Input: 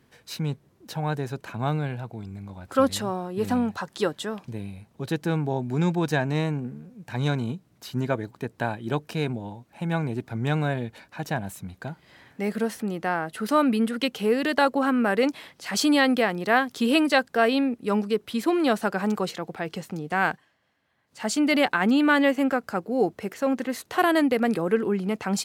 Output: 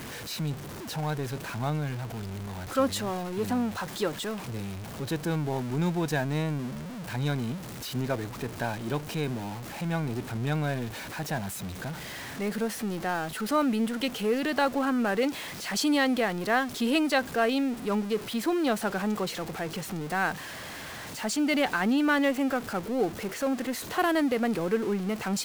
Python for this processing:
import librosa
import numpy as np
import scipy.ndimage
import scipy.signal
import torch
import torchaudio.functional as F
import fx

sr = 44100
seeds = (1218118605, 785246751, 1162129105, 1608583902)

y = x + 0.5 * 10.0 ** (-28.5 / 20.0) * np.sign(x)
y = y * librosa.db_to_amplitude(-5.5)